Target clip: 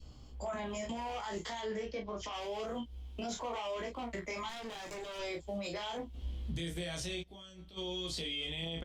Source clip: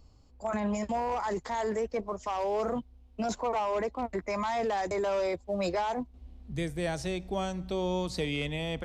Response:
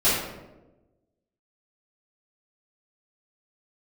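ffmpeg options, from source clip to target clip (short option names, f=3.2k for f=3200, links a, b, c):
-filter_complex "[0:a]acrossover=split=110|1800[a][b][c];[c]dynaudnorm=f=290:g=5:m=6dB[d];[a][b][d]amix=inputs=3:normalize=0,asettb=1/sr,asplit=3[e][f][g];[e]atrim=end=1.594[h];[f]atrim=start=1.59:end=2.33,asetpts=PTS-STARTPTS,afade=t=in:d=0.004:c=qsin,afade=t=out:st=0.736:d=0.004:c=qsin,lowpass=f=5.7k:w=0.5412,lowpass=f=5.7k:w=1.3066[i];[g]atrim=start=2.326[j];[h][i]acrossfade=d=0.004:c1=hsin:c2=qsin[k];[k][j]acrossfade=d=0.004:c1=qsin:c2=hsin,acompressor=threshold=-38dB:ratio=10,equalizer=f=3.2k:w=5.9:g=11.5,asplit=2[l][m];[m]adelay=30,volume=-5.5dB[n];[l][n]amix=inputs=2:normalize=0,flanger=delay=16.5:depth=2.2:speed=0.27,alimiter=level_in=14dB:limit=-24dB:level=0:latency=1:release=60,volume=-14dB,adynamicequalizer=threshold=0.00112:dfrequency=870:dqfactor=1.2:tfrequency=870:tqfactor=1.2:attack=5:release=100:ratio=0.375:range=1.5:mode=cutabove:tftype=bell,asettb=1/sr,asplit=3[o][p][q];[o]atrim=end=4.494[r];[p]atrim=start=4.49:end=5.19,asetpts=PTS-STARTPTS,afade=t=in:d=0.004:c=qsin,afade=t=out:st=0.696:d=0.004:c=qsin,aeval=exprs='max(val(0),0)':c=same[s];[q]atrim=start=5.186[t];[r][s]acrossfade=d=0.004:c1=hsin:c2=qsin[u];[u][t]acrossfade=d=0.004:c1=qsin:c2=hsin,asplit=3[v][w][x];[v]afade=t=out:st=7.22:d=0.02[y];[w]agate=range=-33dB:threshold=-37dB:ratio=3:detection=peak,afade=t=in:st=7.22:d=0.02,afade=t=out:st=7.76:d=0.02[z];[x]afade=t=in:st=7.76:d=0.02[aa];[y][z][aa]amix=inputs=3:normalize=0,volume=8dB" -ar 48000 -c:a libopus -b:a 48k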